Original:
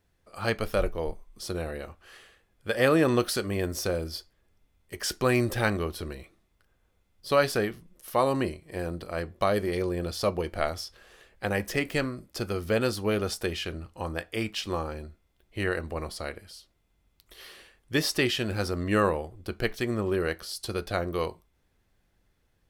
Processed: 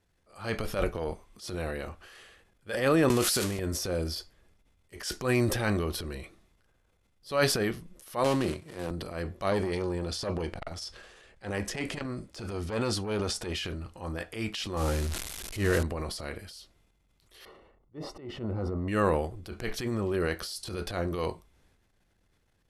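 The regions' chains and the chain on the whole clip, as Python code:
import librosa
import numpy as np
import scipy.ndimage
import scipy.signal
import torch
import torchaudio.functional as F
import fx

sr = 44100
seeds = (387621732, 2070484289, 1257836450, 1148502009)

y = fx.chain(x, sr, fx.highpass(hz=50.0, slope=12),
    fx.peak_eq(hz=2300.0, db=3.0, octaves=2.4), at=(0.76, 1.83))
y = fx.chain(y, sr, fx.crossing_spikes(level_db=-18.5),
    fx.gate_hold(open_db=-17.0, close_db=-21.0, hold_ms=71.0, range_db=-21, attack_ms=1.4, release_ms=100.0),
    fx.high_shelf(hz=6300.0, db=-5.0), at=(3.09, 3.59))
y = fx.chain(y, sr, fx.dead_time(dead_ms=0.18),
    fx.highpass(hz=86.0, slope=24), at=(8.24, 8.91))
y = fx.chain(y, sr, fx.lowpass(hz=10000.0, slope=24),
    fx.transformer_sat(knee_hz=970.0), at=(9.51, 13.55))
y = fx.chain(y, sr, fx.crossing_spikes(level_db=-27.0),
    fx.tilt_eq(slope=-1.5),
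    fx.power_curve(exponent=0.7), at=(14.77, 15.83))
y = fx.chain(y, sr, fx.savgol(points=65),
    fx.auto_swell(attack_ms=191.0), at=(17.45, 18.88))
y = scipy.signal.sosfilt(scipy.signal.ellip(4, 1.0, 40, 12000.0, 'lowpass', fs=sr, output='sos'), y)
y = fx.transient(y, sr, attack_db=-10, sustain_db=7)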